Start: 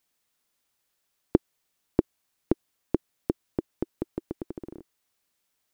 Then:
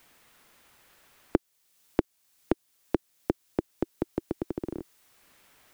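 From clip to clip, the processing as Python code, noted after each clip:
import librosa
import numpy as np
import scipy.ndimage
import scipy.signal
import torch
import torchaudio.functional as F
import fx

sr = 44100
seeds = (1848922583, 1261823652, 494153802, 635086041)

y = fx.high_shelf(x, sr, hz=2700.0, db=8.5)
y = fx.band_squash(y, sr, depth_pct=70)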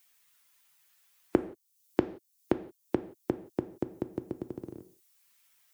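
y = fx.bin_expand(x, sr, power=1.5)
y = scipy.signal.sosfilt(scipy.signal.butter(2, 78.0, 'highpass', fs=sr, output='sos'), y)
y = fx.rev_gated(y, sr, seeds[0], gate_ms=200, shape='falling', drr_db=10.0)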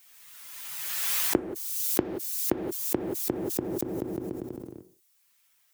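y = fx.pre_swell(x, sr, db_per_s=28.0)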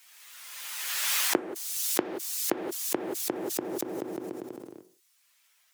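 y = fx.weighting(x, sr, curve='A')
y = y * 10.0 ** (3.5 / 20.0)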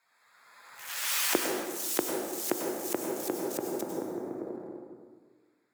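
y = fx.wiener(x, sr, points=15)
y = fx.rev_plate(y, sr, seeds[1], rt60_s=1.6, hf_ratio=0.65, predelay_ms=85, drr_db=1.0)
y = y * 10.0 ** (-2.0 / 20.0)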